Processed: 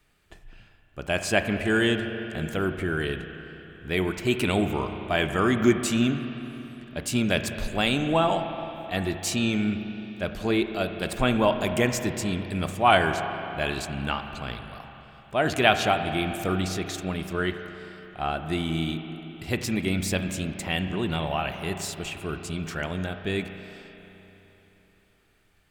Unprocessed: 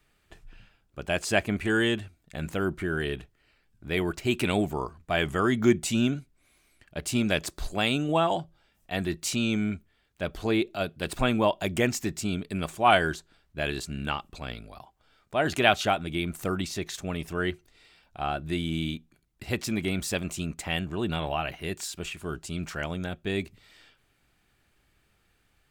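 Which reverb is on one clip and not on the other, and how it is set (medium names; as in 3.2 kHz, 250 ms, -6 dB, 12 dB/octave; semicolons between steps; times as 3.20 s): spring tank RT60 3.6 s, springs 32/43 ms, chirp 55 ms, DRR 7 dB; trim +1.5 dB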